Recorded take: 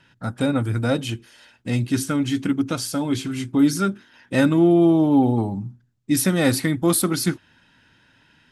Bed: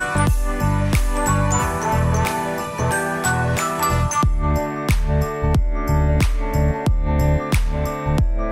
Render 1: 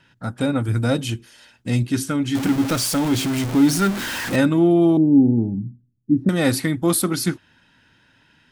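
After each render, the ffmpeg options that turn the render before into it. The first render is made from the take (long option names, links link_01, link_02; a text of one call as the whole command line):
ffmpeg -i in.wav -filter_complex "[0:a]asettb=1/sr,asplit=3[link_01][link_02][link_03];[link_01]atrim=end=0.684[link_04];[link_02]atrim=start=0.68:end=1.83,asetpts=PTS-STARTPTS,afade=type=in:duration=0.004:curve=qsin,afade=type=out:start_time=1.146:duration=0.004:curve=qsin,bass=frequency=250:gain=3,treble=frequency=4000:gain=4[link_05];[link_03]atrim=start=1.826[link_06];[link_04][link_05]acrossfade=duration=0.004:curve1=hsin:curve2=qsin[link_07];[link_07][link_06]acrossfade=duration=0.004:curve1=qsin:curve2=hsin,asettb=1/sr,asplit=3[link_08][link_09][link_10];[link_08]atrim=end=2.354[link_11];[link_09]atrim=start=2.35:end=4.36,asetpts=PTS-STARTPTS,afade=type=in:duration=0.004:curve=qsin,afade=type=out:start_time=2.006:duration=0.004:curve=qsin,aeval=exprs='val(0)+0.5*0.0841*sgn(val(0))':channel_layout=same[link_12];[link_10]atrim=start=4.356[link_13];[link_11][link_12]acrossfade=duration=0.004:curve1=hsin:curve2=qsin[link_14];[link_14][link_13]acrossfade=duration=0.004:curve1=qsin:curve2=hsin,asettb=1/sr,asplit=3[link_15][link_16][link_17];[link_15]atrim=end=4.974[link_18];[link_16]atrim=start=4.97:end=6.29,asetpts=PTS-STARTPTS,afade=type=in:duration=0.004:curve=qsin,afade=type=out:start_time=1.316:duration=0.004:curve=qsin,lowpass=frequency=280:width_type=q:width=1.5[link_19];[link_17]atrim=start=6.286[link_20];[link_18][link_19]acrossfade=duration=0.004:curve1=hsin:curve2=qsin[link_21];[link_21][link_20]acrossfade=duration=0.004:curve1=qsin:curve2=hsin" out.wav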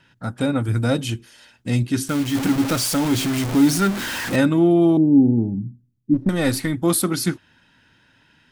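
ffmpeg -i in.wav -filter_complex "[0:a]asettb=1/sr,asplit=3[link_01][link_02][link_03];[link_01]atrim=end=2.084[link_04];[link_02]atrim=start=2.08:end=3.78,asetpts=PTS-STARTPTS,afade=type=in:duration=0.004:curve=qsin,afade=type=out:start_time=1.696:duration=0.004:curve=qsin,acrusher=bits=6:dc=4:mix=0:aa=0.000001[link_05];[link_03]atrim=start=3.776[link_06];[link_04][link_05]acrossfade=duration=0.004:curve1=hsin:curve2=qsin[link_07];[link_07][link_06]acrossfade=duration=0.004:curve1=qsin:curve2=hsin,asplit=3[link_08][link_09][link_10];[link_08]afade=type=out:start_time=6.13:duration=0.02[link_11];[link_09]aeval=exprs='if(lt(val(0),0),0.708*val(0),val(0))':channel_layout=same,afade=type=in:start_time=6.13:duration=0.02,afade=type=out:start_time=6.72:duration=0.02[link_12];[link_10]afade=type=in:start_time=6.72:duration=0.02[link_13];[link_11][link_12][link_13]amix=inputs=3:normalize=0" out.wav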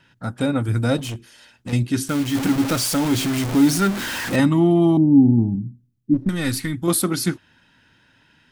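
ffmpeg -i in.wav -filter_complex "[0:a]asettb=1/sr,asplit=3[link_01][link_02][link_03];[link_01]atrim=end=0.974[link_04];[link_02]atrim=start=0.97:end=1.73,asetpts=PTS-STARTPTS,afade=type=in:duration=0.004:curve=qsin,afade=type=out:start_time=0.756:duration=0.004:curve=qsin,asoftclip=type=hard:threshold=-26dB[link_05];[link_03]atrim=start=1.726[link_06];[link_04][link_05]acrossfade=duration=0.004:curve1=hsin:curve2=qsin[link_07];[link_07][link_06]acrossfade=duration=0.004:curve1=qsin:curve2=hsin,asettb=1/sr,asplit=3[link_08][link_09][link_10];[link_08]atrim=end=4.394[link_11];[link_09]atrim=start=4.39:end=5.56,asetpts=PTS-STARTPTS,afade=type=in:duration=0.004:curve=qsin,afade=type=out:start_time=1.166:duration=0.004:curve=qsin,aecho=1:1:1:0.65,atrim=end_sample=51597[link_12];[link_10]atrim=start=5.556[link_13];[link_11][link_12]acrossfade=duration=0.004:curve1=hsin:curve2=qsin[link_14];[link_14][link_13]acrossfade=duration=0.004:curve1=qsin:curve2=hsin,asettb=1/sr,asplit=3[link_15][link_16][link_17];[link_15]atrim=end=6.264[link_18];[link_16]atrim=start=6.26:end=6.88,asetpts=PTS-STARTPTS,afade=type=in:duration=0.004:curve=qsin,afade=type=out:start_time=0.616:duration=0.004:curve=qsin,equalizer=frequency=600:width=1:gain=-11[link_19];[link_17]atrim=start=6.876[link_20];[link_18][link_19]acrossfade=duration=0.004:curve1=hsin:curve2=qsin[link_21];[link_21][link_20]acrossfade=duration=0.004:curve1=qsin:curve2=hsin" out.wav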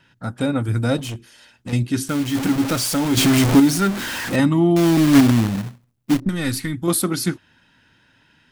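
ffmpeg -i in.wav -filter_complex "[0:a]asettb=1/sr,asplit=3[link_01][link_02][link_03];[link_01]atrim=end=3.174[link_04];[link_02]atrim=start=3.17:end=3.6,asetpts=PTS-STARTPTS,afade=type=in:duration=0.004:curve=qsin,afade=type=out:start_time=0.426:duration=0.004:curve=qsin,acontrast=87[link_05];[link_03]atrim=start=3.596[link_06];[link_04][link_05]acrossfade=duration=0.004:curve1=hsin:curve2=qsin[link_07];[link_07][link_06]acrossfade=duration=0.004:curve1=qsin:curve2=hsin,asettb=1/sr,asplit=3[link_08][link_09][link_10];[link_08]atrim=end=4.764[link_11];[link_09]atrim=start=4.76:end=6.2,asetpts=PTS-STARTPTS,afade=type=in:duration=0.004:curve=qsin,afade=type=out:start_time=1.436:duration=0.004:curve=qsin,acrusher=bits=2:mode=log:mix=0:aa=0.000001[link_12];[link_10]atrim=start=6.196[link_13];[link_11][link_12]acrossfade=duration=0.004:curve1=hsin:curve2=qsin[link_14];[link_14][link_13]acrossfade=duration=0.004:curve1=qsin:curve2=hsin" out.wav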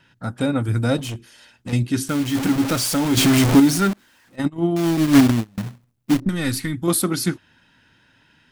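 ffmpeg -i in.wav -filter_complex "[0:a]asettb=1/sr,asplit=3[link_01][link_02][link_03];[link_01]atrim=end=3.934[link_04];[link_02]atrim=start=3.93:end=5.58,asetpts=PTS-STARTPTS,afade=type=in:duration=0.004:curve=qsin,afade=type=out:start_time=1.646:duration=0.004:curve=qsin,agate=range=-29dB:threshold=-15dB:ratio=16:release=100:detection=peak[link_05];[link_03]atrim=start=5.576[link_06];[link_04][link_05]acrossfade=duration=0.004:curve1=hsin:curve2=qsin[link_07];[link_07][link_06]acrossfade=duration=0.004:curve1=qsin:curve2=hsin" out.wav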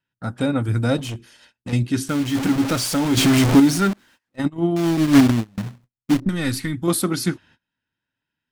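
ffmpeg -i in.wav -af "agate=range=-26dB:threshold=-48dB:ratio=16:detection=peak,highshelf=frequency=10000:gain=-6" out.wav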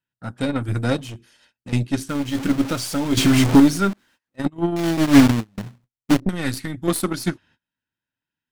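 ffmpeg -i in.wav -af "aeval=exprs='0.668*(cos(1*acos(clip(val(0)/0.668,-1,1)))-cos(1*PI/2))+0.0668*(cos(5*acos(clip(val(0)/0.668,-1,1)))-cos(5*PI/2))+0.0422*(cos(6*acos(clip(val(0)/0.668,-1,1)))-cos(6*PI/2))+0.0944*(cos(7*acos(clip(val(0)/0.668,-1,1)))-cos(7*PI/2))':channel_layout=same" out.wav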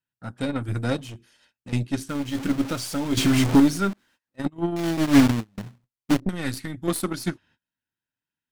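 ffmpeg -i in.wav -af "volume=-4dB" out.wav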